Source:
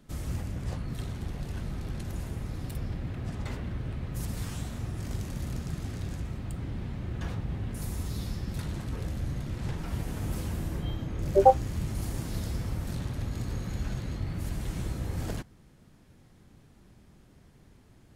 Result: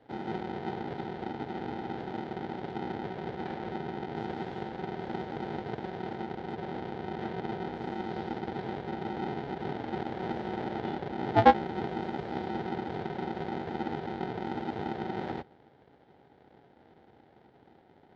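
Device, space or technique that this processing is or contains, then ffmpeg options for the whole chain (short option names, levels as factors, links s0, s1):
ring modulator pedal into a guitar cabinet: -af "aeval=exprs='val(0)*sgn(sin(2*PI*280*n/s))':c=same,highpass=84,equalizer=f=190:t=q:w=4:g=-3,equalizer=f=800:t=q:w=4:g=9,equalizer=f=1100:t=q:w=4:g=-10,equalizer=f=2600:t=q:w=4:g=-9,lowpass=f=3400:w=0.5412,lowpass=f=3400:w=1.3066,volume=0.75"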